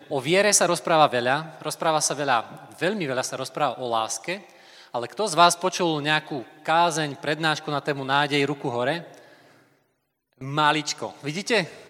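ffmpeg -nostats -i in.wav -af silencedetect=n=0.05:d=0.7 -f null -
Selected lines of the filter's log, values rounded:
silence_start: 8.99
silence_end: 10.43 | silence_duration: 1.44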